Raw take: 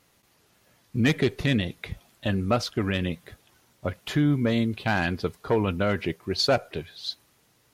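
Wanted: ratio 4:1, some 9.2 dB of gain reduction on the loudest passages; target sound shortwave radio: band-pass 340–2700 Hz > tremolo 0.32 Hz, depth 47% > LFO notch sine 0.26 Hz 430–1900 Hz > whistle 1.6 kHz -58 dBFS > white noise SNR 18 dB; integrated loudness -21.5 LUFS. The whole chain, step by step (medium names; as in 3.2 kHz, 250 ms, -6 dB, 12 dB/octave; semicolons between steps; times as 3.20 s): compression 4:1, threshold -29 dBFS; band-pass 340–2700 Hz; tremolo 0.32 Hz, depth 47%; LFO notch sine 0.26 Hz 430–1900 Hz; whistle 1.6 kHz -58 dBFS; white noise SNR 18 dB; trim +22 dB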